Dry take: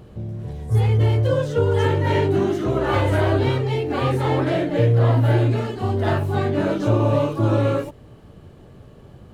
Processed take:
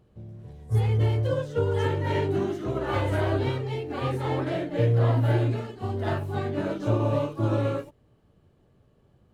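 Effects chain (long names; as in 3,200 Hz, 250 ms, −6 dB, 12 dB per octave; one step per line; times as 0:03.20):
expander for the loud parts 1.5 to 1, over −39 dBFS
level −4.5 dB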